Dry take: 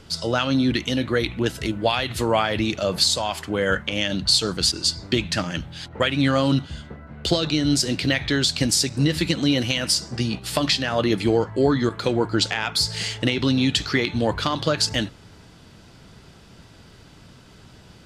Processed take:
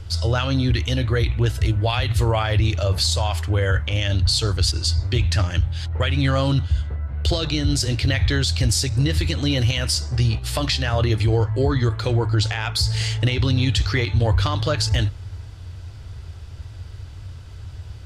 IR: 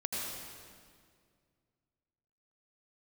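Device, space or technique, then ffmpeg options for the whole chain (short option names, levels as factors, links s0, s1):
car stereo with a boomy subwoofer: -af "lowshelf=f=130:t=q:w=3:g=12.5,alimiter=limit=0.282:level=0:latency=1:release=24"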